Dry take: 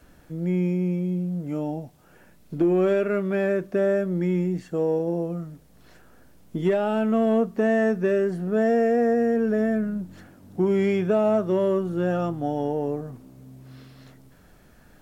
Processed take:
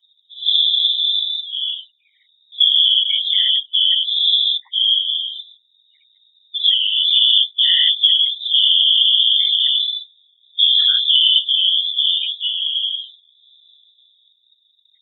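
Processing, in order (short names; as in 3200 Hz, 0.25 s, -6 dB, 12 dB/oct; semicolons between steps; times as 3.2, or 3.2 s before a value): notch 2400 Hz, Q 26; inverted band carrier 3700 Hz; loudest bins only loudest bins 8; whisperiser; spectral noise reduction 13 dB; gain +7 dB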